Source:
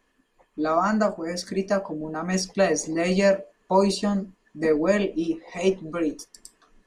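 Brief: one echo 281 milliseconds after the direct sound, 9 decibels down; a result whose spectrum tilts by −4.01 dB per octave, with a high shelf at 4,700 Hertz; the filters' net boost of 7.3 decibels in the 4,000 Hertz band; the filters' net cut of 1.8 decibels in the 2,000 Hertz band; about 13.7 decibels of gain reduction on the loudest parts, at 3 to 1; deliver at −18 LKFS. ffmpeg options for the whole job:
ffmpeg -i in.wav -af "equalizer=frequency=2000:width_type=o:gain=-5,equalizer=frequency=4000:width_type=o:gain=6.5,highshelf=frequency=4700:gain=6.5,acompressor=threshold=-34dB:ratio=3,aecho=1:1:281:0.355,volume=16.5dB" out.wav

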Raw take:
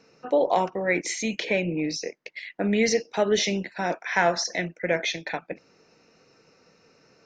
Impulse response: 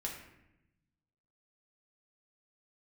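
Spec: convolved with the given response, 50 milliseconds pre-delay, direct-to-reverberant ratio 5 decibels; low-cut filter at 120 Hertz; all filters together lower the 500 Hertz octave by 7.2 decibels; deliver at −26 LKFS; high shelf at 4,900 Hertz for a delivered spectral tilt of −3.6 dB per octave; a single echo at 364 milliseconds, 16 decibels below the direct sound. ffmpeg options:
-filter_complex "[0:a]highpass=120,equalizer=frequency=500:width_type=o:gain=-9,highshelf=frequency=4900:gain=-4,aecho=1:1:364:0.158,asplit=2[link_01][link_02];[1:a]atrim=start_sample=2205,adelay=50[link_03];[link_02][link_03]afir=irnorm=-1:irlink=0,volume=-5.5dB[link_04];[link_01][link_04]amix=inputs=2:normalize=0,volume=1.5dB"

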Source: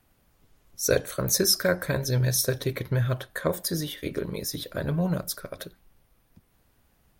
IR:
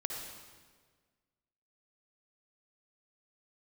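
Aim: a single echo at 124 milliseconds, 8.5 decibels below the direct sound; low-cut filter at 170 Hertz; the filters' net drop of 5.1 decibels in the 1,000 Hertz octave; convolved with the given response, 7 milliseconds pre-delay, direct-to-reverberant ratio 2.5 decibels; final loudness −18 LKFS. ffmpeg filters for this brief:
-filter_complex "[0:a]highpass=170,equalizer=frequency=1000:width_type=o:gain=-7.5,aecho=1:1:124:0.376,asplit=2[link_01][link_02];[1:a]atrim=start_sample=2205,adelay=7[link_03];[link_02][link_03]afir=irnorm=-1:irlink=0,volume=-4dB[link_04];[link_01][link_04]amix=inputs=2:normalize=0,volume=7.5dB"

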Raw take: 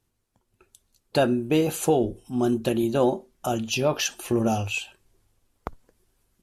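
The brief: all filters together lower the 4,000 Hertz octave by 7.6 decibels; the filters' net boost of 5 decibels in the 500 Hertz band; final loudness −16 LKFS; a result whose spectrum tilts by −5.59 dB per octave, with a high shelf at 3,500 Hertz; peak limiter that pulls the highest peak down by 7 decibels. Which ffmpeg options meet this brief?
ffmpeg -i in.wav -af "equalizer=frequency=500:width_type=o:gain=6.5,highshelf=frequency=3500:gain=-7.5,equalizer=frequency=4000:width_type=o:gain=-6,volume=8.5dB,alimiter=limit=-4dB:level=0:latency=1" out.wav

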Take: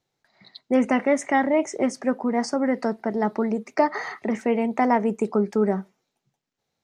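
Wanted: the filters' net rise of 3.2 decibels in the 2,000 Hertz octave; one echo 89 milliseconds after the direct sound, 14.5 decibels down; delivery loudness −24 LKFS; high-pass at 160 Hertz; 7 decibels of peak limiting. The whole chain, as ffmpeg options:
ffmpeg -i in.wav -af "highpass=160,equalizer=frequency=2000:width_type=o:gain=3.5,alimiter=limit=-13.5dB:level=0:latency=1,aecho=1:1:89:0.188,volume=1.5dB" out.wav

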